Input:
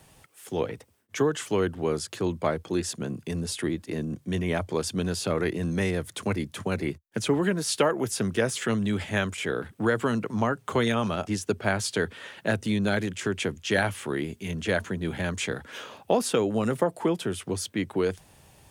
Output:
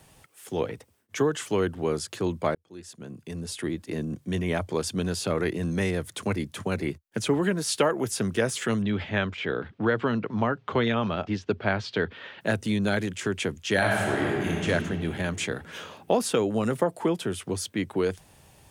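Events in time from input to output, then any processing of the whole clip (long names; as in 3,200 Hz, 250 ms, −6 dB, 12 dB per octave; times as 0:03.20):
0:02.55–0:03.95: fade in
0:08.82–0:12.41: low-pass filter 4,300 Hz 24 dB per octave
0:13.77–0:14.64: thrown reverb, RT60 2.7 s, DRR −3 dB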